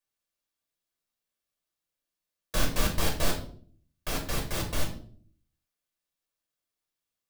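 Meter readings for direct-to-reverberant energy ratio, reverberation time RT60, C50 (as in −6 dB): −0.5 dB, 0.55 s, 8.5 dB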